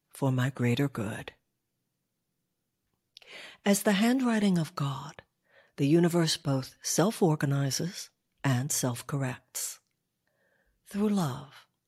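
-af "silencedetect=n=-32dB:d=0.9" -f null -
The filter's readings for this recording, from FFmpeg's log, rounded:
silence_start: 1.28
silence_end: 3.17 | silence_duration: 1.89
silence_start: 9.71
silence_end: 10.95 | silence_duration: 1.24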